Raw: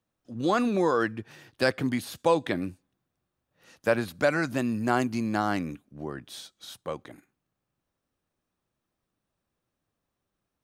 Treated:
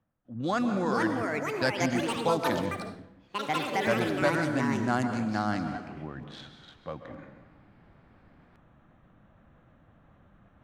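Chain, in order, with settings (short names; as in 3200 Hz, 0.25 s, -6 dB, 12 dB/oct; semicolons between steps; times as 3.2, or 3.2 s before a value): Wiener smoothing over 9 samples; fifteen-band EQ 400 Hz -10 dB, 1000 Hz -4 dB, 2500 Hz -6 dB; low-pass opened by the level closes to 2900 Hz, open at -20.5 dBFS; reverse; upward compressor, threshold -38 dBFS; reverse; plate-style reverb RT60 1.2 s, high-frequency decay 0.75×, pre-delay 0.12 s, DRR 7.5 dB; echoes that change speed 0.587 s, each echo +5 st, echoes 3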